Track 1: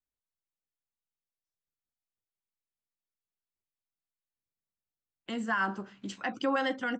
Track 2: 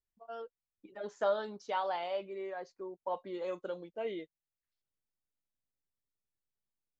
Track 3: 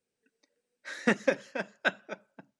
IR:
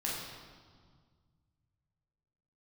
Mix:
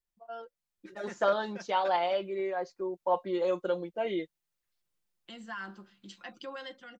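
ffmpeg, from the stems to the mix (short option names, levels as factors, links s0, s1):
-filter_complex "[0:a]equalizer=f=4000:w=1.2:g=10,volume=0.106[s0];[1:a]volume=0.944,asplit=2[s1][s2];[2:a]alimiter=limit=0.141:level=0:latency=1:release=172,volume=0.1[s3];[s2]apad=whole_len=114489[s4];[s3][s4]sidechaingate=range=0.0224:threshold=0.002:ratio=16:detection=peak[s5];[s0][s1][s5]amix=inputs=3:normalize=0,aecho=1:1:5.7:0.51,dynaudnorm=f=310:g=5:m=2.11"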